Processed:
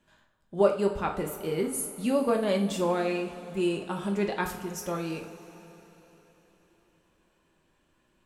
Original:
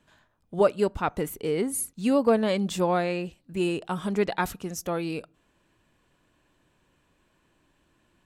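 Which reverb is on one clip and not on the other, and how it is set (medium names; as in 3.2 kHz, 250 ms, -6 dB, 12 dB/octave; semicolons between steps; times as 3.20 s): two-slope reverb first 0.39 s, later 4.2 s, from -18 dB, DRR 1.5 dB; trim -4.5 dB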